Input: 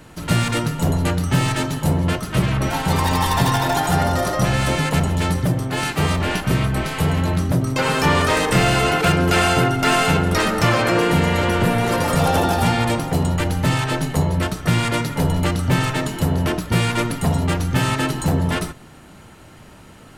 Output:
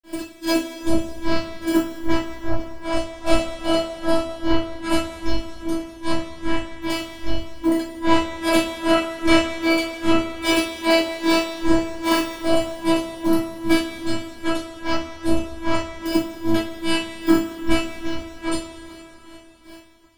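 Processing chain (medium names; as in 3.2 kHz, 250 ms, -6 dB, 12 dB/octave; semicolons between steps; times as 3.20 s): treble shelf 11 kHz -5 dB; granulator 239 ms, grains 2.5 per s, pitch spread up and down by 12 st; robot voice 328 Hz; two-slope reverb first 0.36 s, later 3.9 s, from -18 dB, DRR -5.5 dB; trim -1 dB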